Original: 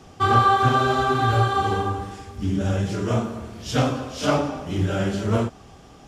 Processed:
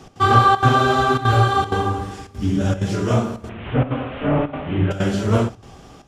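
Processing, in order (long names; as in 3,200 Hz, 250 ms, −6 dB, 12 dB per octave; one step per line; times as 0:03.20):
0:03.49–0:04.91: linear delta modulator 16 kbit/s, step −34.5 dBFS
gate pattern "x.xxxxx.xxxxxx" 192 BPM −12 dB
on a send: convolution reverb RT60 0.40 s, pre-delay 7 ms, DRR 16 dB
on the sum: level +4 dB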